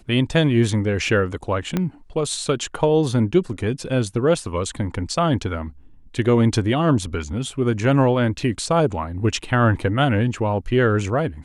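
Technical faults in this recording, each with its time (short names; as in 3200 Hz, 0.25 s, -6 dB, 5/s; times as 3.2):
1.77 pop -9 dBFS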